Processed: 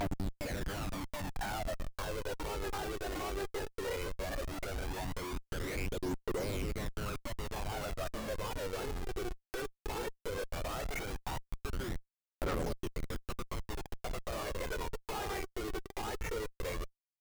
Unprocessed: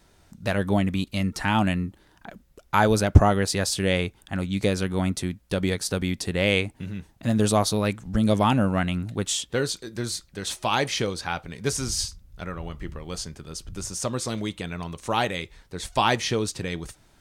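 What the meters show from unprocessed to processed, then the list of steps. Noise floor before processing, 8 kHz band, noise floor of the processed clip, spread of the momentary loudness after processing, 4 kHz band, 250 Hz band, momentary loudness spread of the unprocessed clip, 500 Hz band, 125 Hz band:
−59 dBFS, −16.5 dB, below −85 dBFS, 5 LU, −15.5 dB, −17.0 dB, 14 LU, −11.5 dB, −16.0 dB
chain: spectral magnitudes quantised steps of 30 dB
elliptic low-pass filter 2,300 Hz, stop band 40 dB
on a send: backwards echo 755 ms −7.5 dB
on the sum: noise gate −35 dBFS, range −19 dB
high-pass filter 360 Hz 24 dB per octave
in parallel at −2.5 dB: brickwall limiter −19 dBFS, peak gain reduction 11.5 dB
on the sum: downward compressor 12 to 1, threshold −30 dBFS, peak gain reduction 16 dB
floating-point word with a short mantissa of 6 bits
comparator with hysteresis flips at −37 dBFS
phase shifter 0.16 Hz, delay 2.8 ms, feedback 54%
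one half of a high-frequency compander encoder only
level −3 dB

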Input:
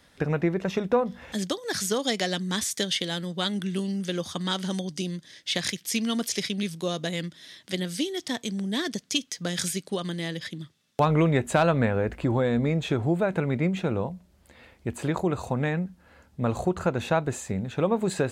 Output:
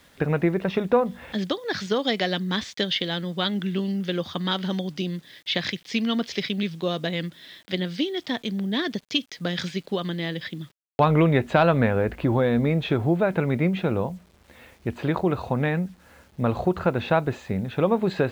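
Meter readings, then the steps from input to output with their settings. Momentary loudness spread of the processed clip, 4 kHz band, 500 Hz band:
9 LU, +1.5 dB, +3.0 dB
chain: low-pass filter 4,200 Hz 24 dB per octave
low-shelf EQ 90 Hz −2 dB
bit reduction 10 bits
level +3 dB

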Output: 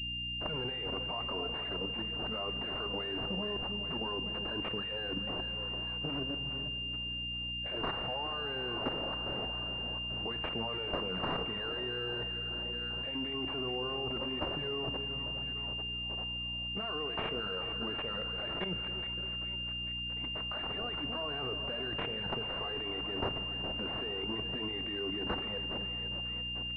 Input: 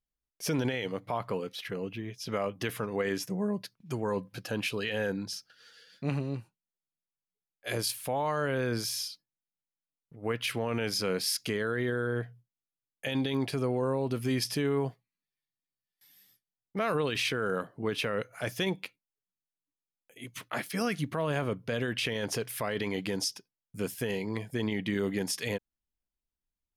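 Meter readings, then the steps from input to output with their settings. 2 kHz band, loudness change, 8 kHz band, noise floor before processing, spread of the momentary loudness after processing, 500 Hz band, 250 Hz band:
+1.5 dB, −2.5 dB, below −30 dB, below −85 dBFS, 1 LU, −7.5 dB, −7.5 dB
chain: tilt shelving filter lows −8 dB, about 810 Hz
on a send: echo with a time of its own for lows and highs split 780 Hz, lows 286 ms, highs 422 ms, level −12 dB
on the sum: output level in coarse steps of 13 dB
flanger swept by the level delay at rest 11.6 ms, full sweep at −27 dBFS
high-pass filter 110 Hz
mains hum 60 Hz, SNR 14 dB
in parallel at 0 dB: compressor whose output falls as the input rises −46 dBFS, ratio −0.5
on the sum: parametric band 140 Hz +3.5 dB 1.9 octaves
four-comb reverb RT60 2.6 s, combs from 32 ms, DRR 12 dB
switching amplifier with a slow clock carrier 2,800 Hz

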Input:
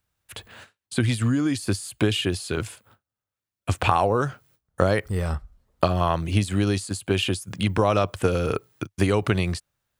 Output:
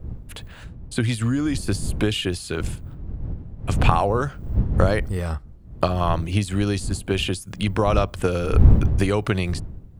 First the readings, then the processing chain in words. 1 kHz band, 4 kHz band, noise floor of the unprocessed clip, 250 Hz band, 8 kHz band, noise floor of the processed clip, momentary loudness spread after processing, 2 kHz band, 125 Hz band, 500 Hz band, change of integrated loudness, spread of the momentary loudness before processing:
0.0 dB, 0.0 dB, below −85 dBFS, +1.0 dB, 0.0 dB, −42 dBFS, 15 LU, 0.0 dB, +3.5 dB, 0.0 dB, +1.5 dB, 12 LU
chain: wind on the microphone 96 Hz −24 dBFS

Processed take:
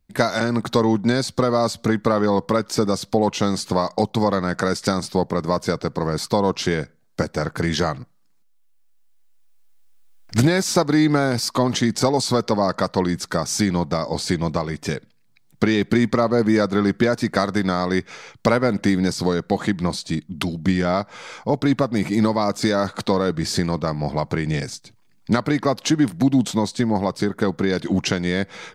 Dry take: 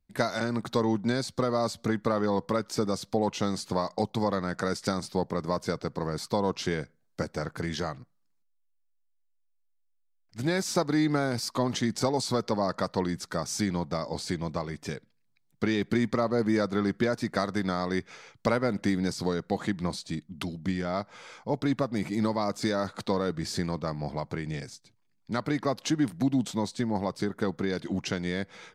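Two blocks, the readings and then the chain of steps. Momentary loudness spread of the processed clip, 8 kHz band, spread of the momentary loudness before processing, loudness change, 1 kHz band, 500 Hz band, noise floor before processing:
7 LU, +9.0 dB, 8 LU, +8.5 dB, +8.5 dB, +8.5 dB, −70 dBFS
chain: camcorder AGC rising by 5.6 dB per second
level +8 dB

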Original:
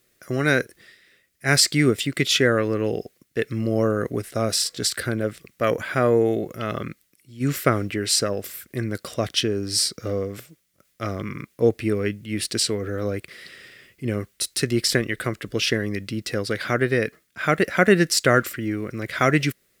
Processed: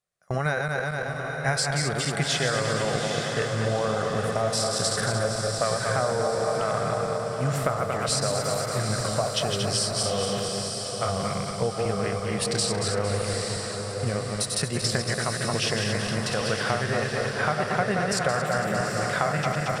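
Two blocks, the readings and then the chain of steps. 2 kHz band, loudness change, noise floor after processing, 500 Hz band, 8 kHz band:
−3.0 dB, −3.0 dB, −32 dBFS, −2.5 dB, −1.5 dB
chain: feedback delay that plays each chunk backwards 114 ms, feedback 71%, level −5 dB
noise gate with hold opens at −25 dBFS
drawn EQ curve 100 Hz 0 dB, 170 Hz +4 dB, 300 Hz −13 dB, 780 Hz +12 dB, 2,100 Hz −3 dB, 9,400 Hz +1 dB, 14,000 Hz −16 dB
downward compressor, threshold −23 dBFS, peak gain reduction 14 dB
on a send: feedback delay with all-pass diffusion 852 ms, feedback 48%, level −5 dB

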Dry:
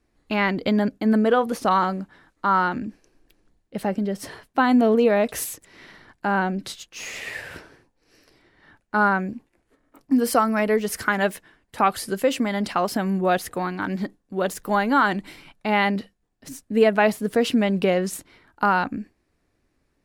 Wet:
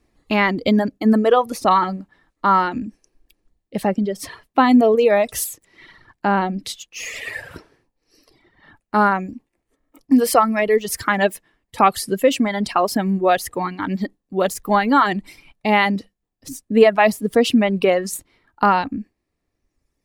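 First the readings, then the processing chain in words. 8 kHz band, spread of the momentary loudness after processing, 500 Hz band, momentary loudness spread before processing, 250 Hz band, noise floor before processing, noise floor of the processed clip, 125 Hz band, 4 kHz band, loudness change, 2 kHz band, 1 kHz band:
+5.0 dB, 15 LU, +4.5 dB, 15 LU, +3.5 dB, −71 dBFS, −77 dBFS, +2.0 dB, +4.5 dB, +4.0 dB, +2.0 dB, +4.5 dB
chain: notch filter 1,500 Hz, Q 8.1
reverb reduction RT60 1.8 s
level +5.5 dB

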